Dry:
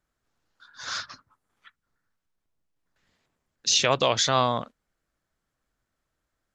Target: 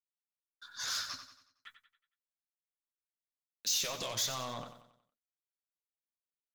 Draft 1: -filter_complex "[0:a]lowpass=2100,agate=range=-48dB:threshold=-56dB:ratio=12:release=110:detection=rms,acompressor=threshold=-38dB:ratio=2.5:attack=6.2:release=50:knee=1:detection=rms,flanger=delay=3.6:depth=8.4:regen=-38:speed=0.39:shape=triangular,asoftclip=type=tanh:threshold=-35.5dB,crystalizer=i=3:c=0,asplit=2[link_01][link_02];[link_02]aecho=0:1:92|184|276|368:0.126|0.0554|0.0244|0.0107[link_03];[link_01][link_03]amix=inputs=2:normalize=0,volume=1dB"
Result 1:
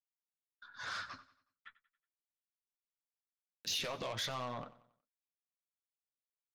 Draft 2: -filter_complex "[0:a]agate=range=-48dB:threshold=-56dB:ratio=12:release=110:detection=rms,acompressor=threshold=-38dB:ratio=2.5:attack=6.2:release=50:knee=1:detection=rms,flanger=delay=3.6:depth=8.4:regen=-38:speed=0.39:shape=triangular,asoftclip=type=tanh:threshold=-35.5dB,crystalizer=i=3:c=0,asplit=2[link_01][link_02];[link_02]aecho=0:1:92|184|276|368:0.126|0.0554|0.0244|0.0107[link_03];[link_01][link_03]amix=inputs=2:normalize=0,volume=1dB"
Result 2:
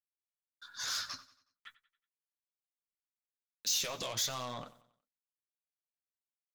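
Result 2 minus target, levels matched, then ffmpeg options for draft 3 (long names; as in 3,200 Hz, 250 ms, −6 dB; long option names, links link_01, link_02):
echo-to-direct −7.5 dB
-filter_complex "[0:a]agate=range=-48dB:threshold=-56dB:ratio=12:release=110:detection=rms,acompressor=threshold=-38dB:ratio=2.5:attack=6.2:release=50:knee=1:detection=rms,flanger=delay=3.6:depth=8.4:regen=-38:speed=0.39:shape=triangular,asoftclip=type=tanh:threshold=-35.5dB,crystalizer=i=3:c=0,asplit=2[link_01][link_02];[link_02]aecho=0:1:92|184|276|368|460:0.299|0.131|0.0578|0.0254|0.0112[link_03];[link_01][link_03]amix=inputs=2:normalize=0,volume=1dB"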